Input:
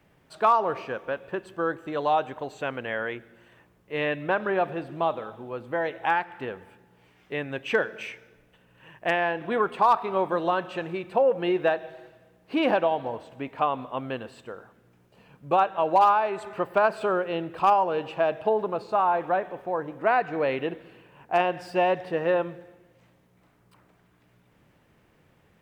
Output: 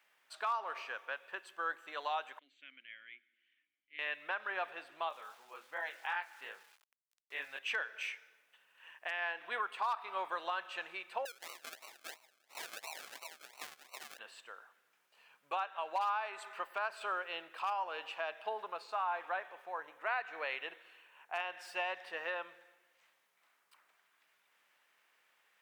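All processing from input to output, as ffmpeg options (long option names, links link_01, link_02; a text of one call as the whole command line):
ffmpeg -i in.wav -filter_complex "[0:a]asettb=1/sr,asplit=3[link_01][link_02][link_03];[link_01]atrim=end=2.394[link_04];[link_02]atrim=start=2.39:end=3.99,asetpts=PTS-STARTPTS,afade=type=in:duration=0.004:curve=qsin,afade=type=out:start_time=1.596:duration=0.004:curve=qsin,asplit=3[link_05][link_06][link_07];[link_05]bandpass=frequency=270:width_type=q:width=8,volume=0dB[link_08];[link_06]bandpass=frequency=2290:width_type=q:width=8,volume=-6dB[link_09];[link_07]bandpass=frequency=3010:width_type=q:width=8,volume=-9dB[link_10];[link_08][link_09][link_10]amix=inputs=3:normalize=0,equalizer=frequency=450:width=5.1:gain=-10[link_11];[link_03]atrim=start=3.986[link_12];[link_04][link_11]acrossfade=duration=0.004:curve1=hsin:curve2=qsin[link_13];[link_13][link_12]acrossfade=duration=0.004:curve1=qsin:curve2=hsin,asettb=1/sr,asplit=3[link_14][link_15][link_16];[link_14]atrim=end=5.094[link_17];[link_15]atrim=start=5.09:end=7.59,asetpts=PTS-STARTPTS,afade=type=in:duration=0.004:curve=qsin,afade=type=out:start_time=2.496:duration=0.004:curve=qsin,asplit=2[link_18][link_19];[link_19]adelay=38,volume=-14dB[link_20];[link_18][link_20]amix=inputs=2:normalize=0,atrim=end_sample=110250,flanger=delay=17:depth=6.5:speed=2.7,aeval=exprs='val(0)*gte(abs(val(0)),0.00237)':channel_layout=same[link_21];[link_16]atrim=start=7.586[link_22];[link_17][link_21]acrossfade=duration=0.004:curve1=hsin:curve2=qsin[link_23];[link_23][link_22]acrossfade=duration=0.004:curve1=qsin:curve2=hsin,asettb=1/sr,asplit=3[link_24][link_25][link_26];[link_24]atrim=end=11.254[link_27];[link_25]atrim=start=11.25:end=14.19,asetpts=PTS-STARTPTS,afade=type=in:duration=0.004:curve=qsin,afade=type=out:start_time=2.936:duration=0.004:curve=qsin,highpass=1400,aecho=1:1:394:0.531,atrim=end_sample=129654,acrusher=samples=37:mix=1:aa=0.000001:lfo=1:lforange=22.2:lforate=2.9[link_28];[link_26]atrim=start=14.186[link_29];[link_27][link_28]acrossfade=duration=0.004:curve1=hsin:curve2=qsin[link_30];[link_30][link_29]acrossfade=duration=0.004:curve1=qsin:curve2=hsin,asettb=1/sr,asplit=3[link_31][link_32][link_33];[link_31]atrim=end=19.694[link_34];[link_32]atrim=start=19.69:end=21.8,asetpts=PTS-STARTPTS,afade=type=in:duration=0.004:curve=qsin,afade=type=out:start_time=2.106:duration=0.004:curve=qsin,equalizer=frequency=250:width_type=o:width=0.31:gain=-6.5,bandreject=frequency=4800:width=11[link_35];[link_33]atrim=start=21.796[link_36];[link_34][link_35]acrossfade=duration=0.004:curve1=hsin:curve2=qsin[link_37];[link_37][link_36]acrossfade=duration=0.004:curve1=qsin:curve2=hsin,highpass=1300,alimiter=limit=-23.5dB:level=0:latency=1:release=280,volume=-2.5dB" out.wav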